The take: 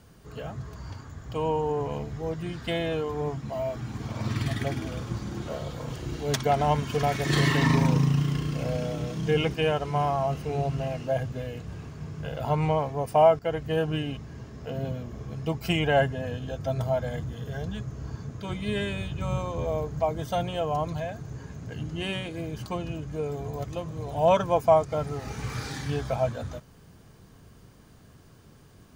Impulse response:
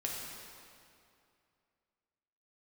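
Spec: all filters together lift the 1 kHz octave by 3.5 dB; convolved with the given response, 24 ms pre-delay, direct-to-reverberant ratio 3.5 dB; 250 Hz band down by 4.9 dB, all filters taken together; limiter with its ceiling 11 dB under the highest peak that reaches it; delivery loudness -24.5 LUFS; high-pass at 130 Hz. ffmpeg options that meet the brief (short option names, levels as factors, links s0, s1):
-filter_complex "[0:a]highpass=130,equalizer=f=250:t=o:g=-7,equalizer=f=1000:t=o:g=5.5,alimiter=limit=0.133:level=0:latency=1,asplit=2[s0][s1];[1:a]atrim=start_sample=2205,adelay=24[s2];[s1][s2]afir=irnorm=-1:irlink=0,volume=0.501[s3];[s0][s3]amix=inputs=2:normalize=0,volume=1.78"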